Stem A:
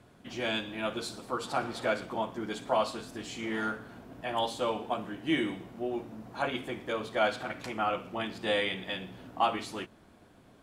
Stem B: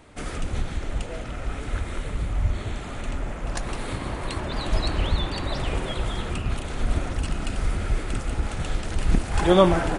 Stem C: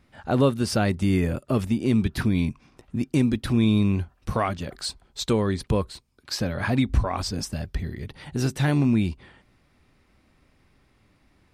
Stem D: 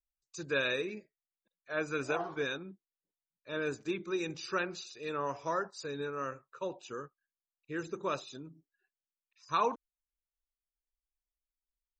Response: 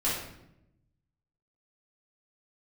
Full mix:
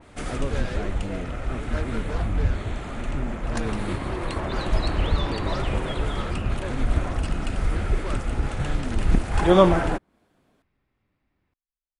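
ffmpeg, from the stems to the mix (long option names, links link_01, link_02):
-filter_complex "[0:a]acrossover=split=240[link_01][link_02];[link_02]acompressor=threshold=-56dB:ratio=2[link_03];[link_01][link_03]amix=inputs=2:normalize=0,highpass=140,volume=-6.5dB[link_04];[1:a]volume=1dB[link_05];[2:a]lowpass=3200,volume=-12.5dB[link_06];[3:a]asoftclip=type=hard:threshold=-29.5dB,lowpass=1400,aeval=exprs='0.0376*(cos(1*acos(clip(val(0)/0.0376,-1,1)))-cos(1*PI/2))+0.00841*(cos(7*acos(clip(val(0)/0.0376,-1,1)))-cos(7*PI/2))':channel_layout=same,volume=0.5dB[link_07];[link_04][link_05][link_06][link_07]amix=inputs=4:normalize=0,adynamicequalizer=threshold=0.00501:dfrequency=2900:dqfactor=0.7:tfrequency=2900:tqfactor=0.7:attack=5:release=100:ratio=0.375:range=2.5:mode=cutabove:tftype=highshelf"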